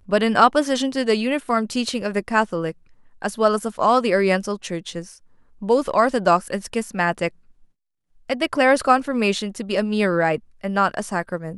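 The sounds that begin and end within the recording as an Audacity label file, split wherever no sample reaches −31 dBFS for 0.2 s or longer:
3.220000	5.070000	sound
5.620000	7.280000	sound
8.300000	10.380000	sound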